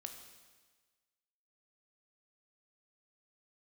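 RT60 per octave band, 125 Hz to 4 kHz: 1.4 s, 1.3 s, 1.4 s, 1.4 s, 1.4 s, 1.4 s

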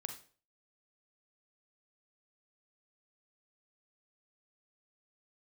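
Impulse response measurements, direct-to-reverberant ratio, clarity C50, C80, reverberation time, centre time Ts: 5.5 dB, 8.0 dB, 13.5 dB, 0.45 s, 16 ms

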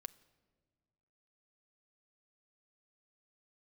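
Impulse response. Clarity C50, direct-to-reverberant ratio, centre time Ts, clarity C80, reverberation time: 20.5 dB, 11.0 dB, 2 ms, 22.0 dB, no single decay rate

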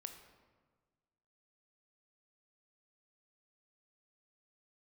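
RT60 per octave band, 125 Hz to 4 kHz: 1.8 s, 1.7 s, 1.5 s, 1.4 s, 1.2 s, 0.85 s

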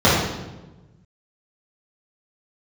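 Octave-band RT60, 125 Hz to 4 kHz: 1.8 s, 1.5 s, 1.2 s, 1.0 s, 0.85 s, 0.80 s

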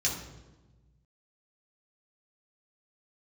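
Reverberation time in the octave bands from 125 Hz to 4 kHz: 2.0 s, 1.6 s, 1.3 s, 1.1 s, 0.85 s, 0.80 s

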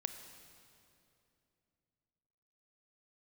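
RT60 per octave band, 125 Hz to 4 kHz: 3.6 s, 3.4 s, 3.0 s, 2.5 s, 2.4 s, 2.2 s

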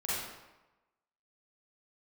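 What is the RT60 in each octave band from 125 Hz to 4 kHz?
0.95 s, 0.95 s, 1.0 s, 1.1 s, 0.90 s, 0.75 s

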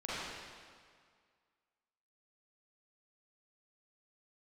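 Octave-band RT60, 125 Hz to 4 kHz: 1.9 s, 1.9 s, 1.9 s, 2.0 s, 1.8 s, 1.7 s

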